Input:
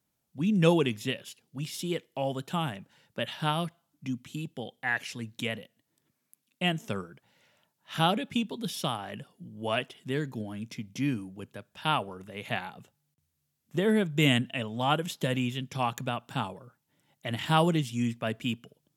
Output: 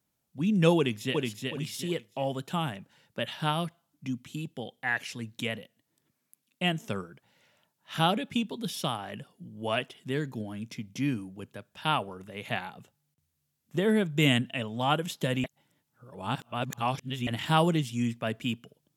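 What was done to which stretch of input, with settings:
0.77–1.22 echo throw 0.37 s, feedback 30%, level -3 dB
15.44–17.27 reverse

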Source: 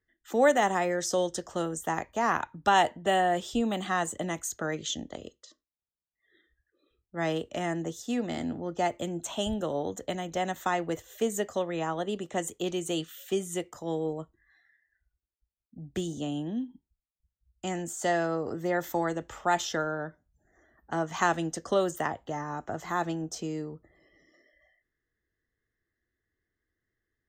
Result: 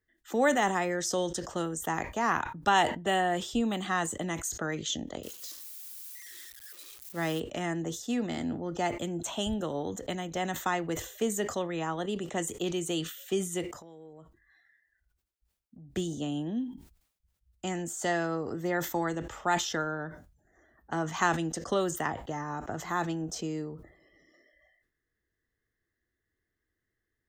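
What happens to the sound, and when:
5.23–7.4 switching spikes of -35.5 dBFS
13.81–15.92 compressor, threshold -47 dBFS
whole clip: dynamic EQ 600 Hz, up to -5 dB, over -39 dBFS, Q 1.9; sustainer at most 100 dB/s

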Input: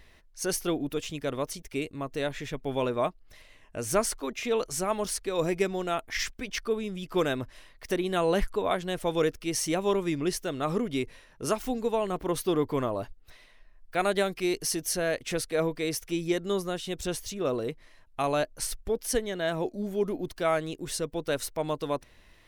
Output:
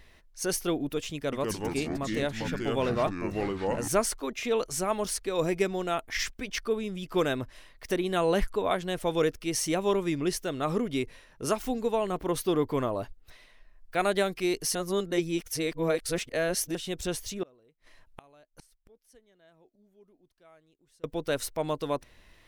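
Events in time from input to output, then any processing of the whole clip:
1.15–3.88 echoes that change speed 0.174 s, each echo -4 st, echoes 3
14.75–16.75 reverse
17.43–21.04 flipped gate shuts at -33 dBFS, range -31 dB

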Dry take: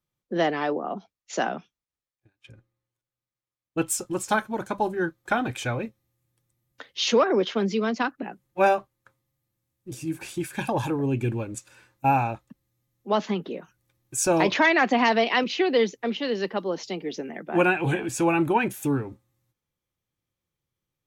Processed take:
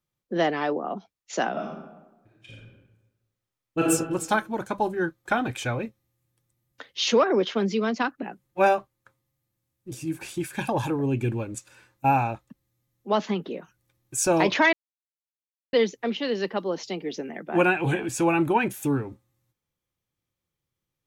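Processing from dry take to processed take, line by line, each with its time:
1.51–3.83 reverb throw, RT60 1.1 s, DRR -4.5 dB
14.73–15.73 mute

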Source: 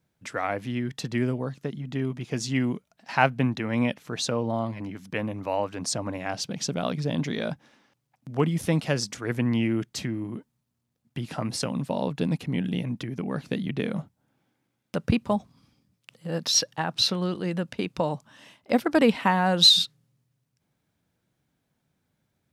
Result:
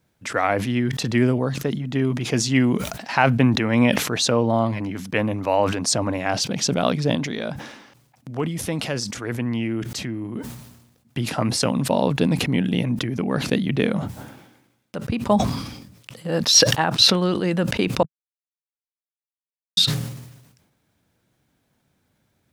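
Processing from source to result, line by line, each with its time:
7.15–10.36 compressor 1.5:1, threshold -42 dBFS
13.96–15.33 dip -9.5 dB, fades 0.14 s
18.03–19.77 mute
whole clip: bell 160 Hz -4 dB 0.45 oct; maximiser +9 dB; sustainer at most 57 dB/s; gain -1.5 dB

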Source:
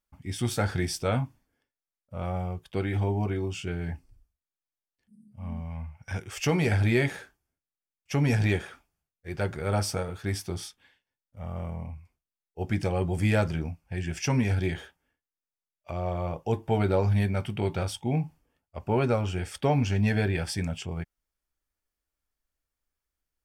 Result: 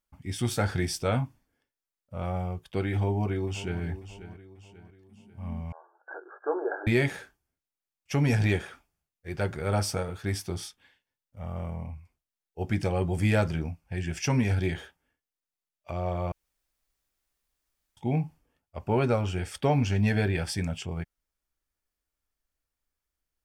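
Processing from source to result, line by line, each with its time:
2.93–3.82 echo throw 0.54 s, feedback 45%, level -13.5 dB
5.72–6.87 brick-wall FIR band-pass 310–1700 Hz
16.32–17.97 room tone

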